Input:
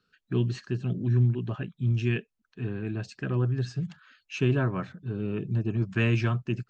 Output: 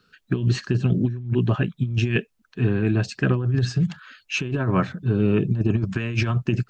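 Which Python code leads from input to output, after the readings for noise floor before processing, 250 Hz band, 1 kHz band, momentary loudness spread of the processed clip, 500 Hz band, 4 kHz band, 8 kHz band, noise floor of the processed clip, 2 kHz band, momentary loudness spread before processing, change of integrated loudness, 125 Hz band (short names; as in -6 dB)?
-79 dBFS, +7.0 dB, +7.5 dB, 6 LU, +6.0 dB, +8.0 dB, n/a, -67 dBFS, +6.0 dB, 10 LU, +5.5 dB, +5.0 dB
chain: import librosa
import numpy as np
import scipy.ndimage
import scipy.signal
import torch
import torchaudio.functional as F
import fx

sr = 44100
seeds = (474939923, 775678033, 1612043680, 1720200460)

y = fx.over_compress(x, sr, threshold_db=-28.0, ratio=-0.5)
y = F.gain(torch.from_numpy(y), 8.5).numpy()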